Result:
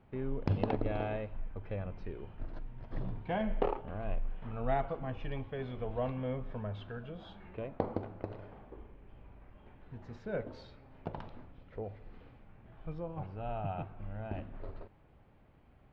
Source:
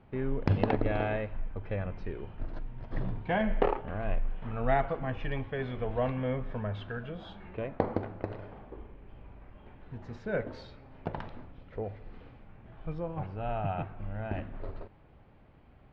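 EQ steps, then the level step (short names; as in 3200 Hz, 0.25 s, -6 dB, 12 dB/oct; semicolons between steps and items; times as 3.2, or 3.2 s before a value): dynamic EQ 1800 Hz, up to -6 dB, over -55 dBFS, Q 2.1; -4.5 dB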